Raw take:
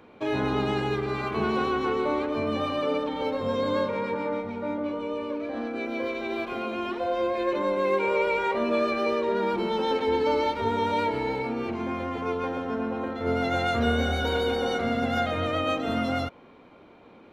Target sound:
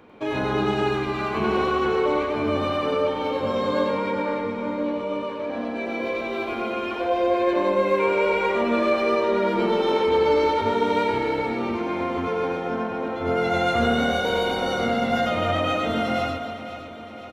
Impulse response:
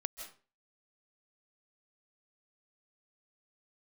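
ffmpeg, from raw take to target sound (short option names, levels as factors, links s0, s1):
-filter_complex "[0:a]equalizer=f=4000:t=o:w=0.21:g=-2.5,aecho=1:1:510|1020|1530|2040|2550|3060:0.224|0.13|0.0753|0.0437|0.0253|0.0147,asplit=2[s0][s1];[1:a]atrim=start_sample=2205,adelay=97[s2];[s1][s2]afir=irnorm=-1:irlink=0,volume=0.891[s3];[s0][s3]amix=inputs=2:normalize=0,volume=1.19"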